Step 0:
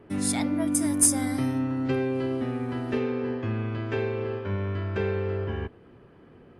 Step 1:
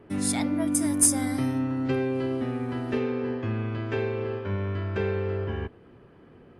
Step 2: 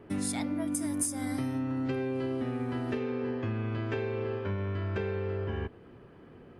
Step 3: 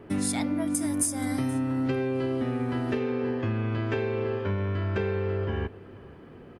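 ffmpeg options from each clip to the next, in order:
ffmpeg -i in.wav -af anull out.wav
ffmpeg -i in.wav -af "acompressor=threshold=-29dB:ratio=6" out.wav
ffmpeg -i in.wav -af "aecho=1:1:476:0.0841,volume=4.5dB" out.wav

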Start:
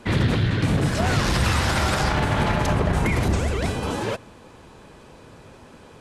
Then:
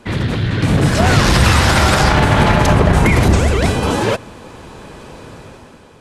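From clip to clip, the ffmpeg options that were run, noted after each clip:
ffmpeg -i in.wav -af "dynaudnorm=framelen=120:gausssize=11:maxgain=10dB,volume=1.5dB" out.wav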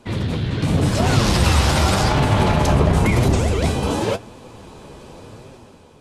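ffmpeg -i in.wav -af "equalizer=frequency=1700:width_type=o:width=0.9:gain=-6.5,flanger=delay=7.1:depth=7.8:regen=55:speed=0.91:shape=triangular" out.wav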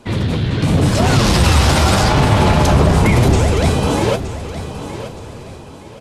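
ffmpeg -i in.wav -af "acontrast=52,aecho=1:1:919|1838|2757:0.237|0.0759|0.0243,volume=-1dB" out.wav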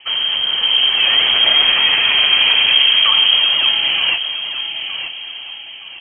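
ffmpeg -i in.wav -filter_complex "[0:a]asplit=2[link_01][link_02];[link_02]aeval=exprs='(mod(7.08*val(0)+1,2)-1)/7.08':channel_layout=same,volume=-7.5dB[link_03];[link_01][link_03]amix=inputs=2:normalize=0,lowpass=frequency=2800:width_type=q:width=0.5098,lowpass=frequency=2800:width_type=q:width=0.6013,lowpass=frequency=2800:width_type=q:width=0.9,lowpass=frequency=2800:width_type=q:width=2.563,afreqshift=-3300,volume=-1dB" out.wav

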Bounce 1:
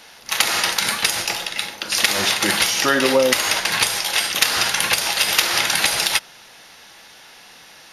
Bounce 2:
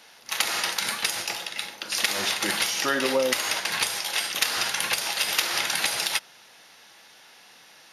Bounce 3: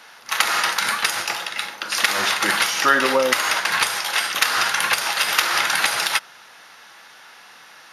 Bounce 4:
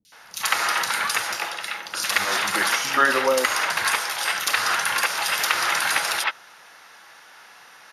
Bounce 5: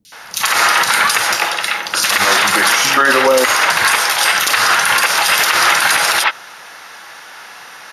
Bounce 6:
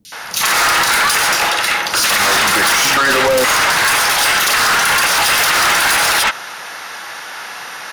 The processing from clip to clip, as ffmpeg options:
ffmpeg -i in.wav -af "highpass=frequency=150:poles=1,volume=-7dB" out.wav
ffmpeg -i in.wav -af "equalizer=frequency=1300:width=1.1:gain=9.5,volume=2.5dB" out.wav
ffmpeg -i in.wav -filter_complex "[0:a]acrossover=split=210|3600[link_01][link_02][link_03];[link_03]adelay=50[link_04];[link_02]adelay=120[link_05];[link_01][link_05][link_04]amix=inputs=3:normalize=0,volume=-1.5dB" out.wav
ffmpeg -i in.wav -af "alimiter=level_in=13.5dB:limit=-1dB:release=50:level=0:latency=1,volume=-1dB" out.wav
ffmpeg -i in.wav -af "asoftclip=type=tanh:threshold=-17dB,volume=6.5dB" out.wav

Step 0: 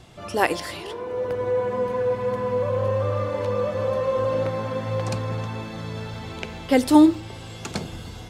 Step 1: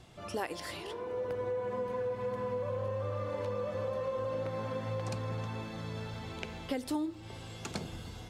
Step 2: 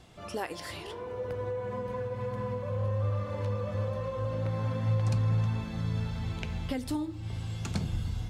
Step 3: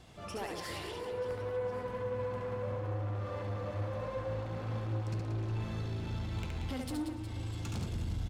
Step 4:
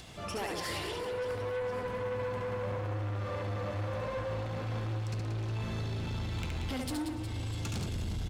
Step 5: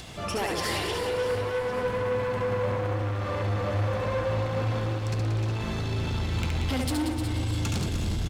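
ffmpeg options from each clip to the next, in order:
ffmpeg -i in.wav -af "acompressor=threshold=-24dB:ratio=8,volume=-7.5dB" out.wav
ffmpeg -i in.wav -af "flanger=delay=4:depth=7.9:regen=-80:speed=0.34:shape=sinusoidal,asubboost=boost=5:cutoff=170,volume=5.5dB" out.wav
ffmpeg -i in.wav -filter_complex "[0:a]asoftclip=type=tanh:threshold=-33.5dB,asplit=2[link_01][link_02];[link_02]aecho=0:1:70|182|361.2|647.9|1107:0.631|0.398|0.251|0.158|0.1[link_03];[link_01][link_03]amix=inputs=2:normalize=0,volume=-1.5dB" out.wav
ffmpeg -i in.wav -filter_complex "[0:a]acrossover=split=1700[link_01][link_02];[link_01]asoftclip=type=tanh:threshold=-37dB[link_03];[link_02]acompressor=mode=upward:threshold=-54dB:ratio=2.5[link_04];[link_03][link_04]amix=inputs=2:normalize=0,volume=5.5dB" out.wav
ffmpeg -i in.wav -af "aecho=1:1:304|608|912|1216|1520:0.335|0.147|0.0648|0.0285|0.0126,volume=7dB" out.wav

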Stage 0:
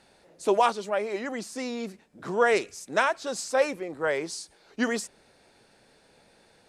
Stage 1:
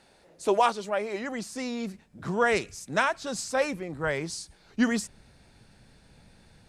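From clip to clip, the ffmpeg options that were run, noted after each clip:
ffmpeg -i in.wav -af "asubboost=boost=7.5:cutoff=160" out.wav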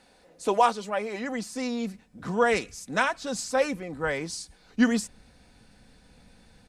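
ffmpeg -i in.wav -af "aecho=1:1:4:0.41" out.wav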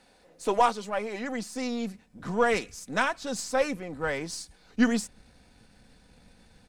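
ffmpeg -i in.wav -af "aeval=exprs='if(lt(val(0),0),0.708*val(0),val(0))':channel_layout=same" out.wav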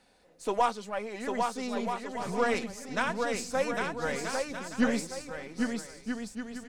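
ffmpeg -i in.wav -af "aecho=1:1:800|1280|1568|1741|1844:0.631|0.398|0.251|0.158|0.1,volume=-4dB" out.wav

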